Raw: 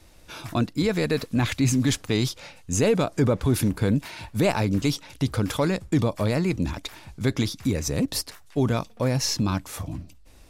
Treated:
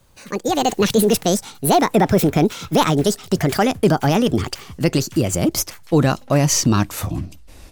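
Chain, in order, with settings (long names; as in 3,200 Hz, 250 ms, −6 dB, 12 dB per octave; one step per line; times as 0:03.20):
gliding playback speed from 173% → 99%
automatic gain control gain up to 14.5 dB
level −3.5 dB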